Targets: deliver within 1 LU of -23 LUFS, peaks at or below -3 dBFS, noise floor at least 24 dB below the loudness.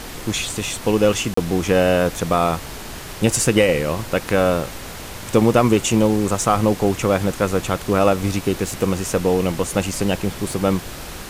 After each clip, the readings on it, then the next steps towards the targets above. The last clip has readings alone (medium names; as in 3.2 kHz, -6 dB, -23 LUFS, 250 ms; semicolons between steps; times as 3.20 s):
dropouts 1; longest dropout 34 ms; noise floor -34 dBFS; noise floor target -44 dBFS; loudness -19.5 LUFS; peak level -3.0 dBFS; loudness target -23.0 LUFS
-> interpolate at 1.34 s, 34 ms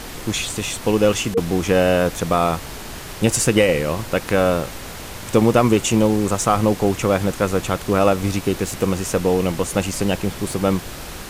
dropouts 0; noise floor -34 dBFS; noise floor target -44 dBFS
-> noise print and reduce 10 dB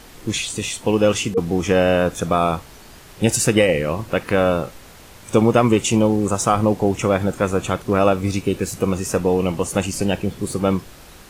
noise floor -43 dBFS; noise floor target -44 dBFS
-> noise print and reduce 6 dB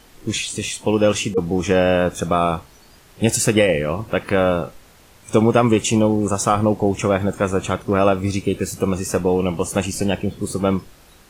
noise floor -49 dBFS; loudness -19.5 LUFS; peak level -3.0 dBFS; loudness target -23.0 LUFS
-> trim -3.5 dB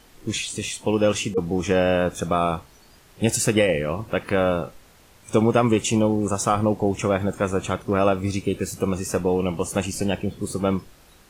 loudness -23.0 LUFS; peak level -6.5 dBFS; noise floor -53 dBFS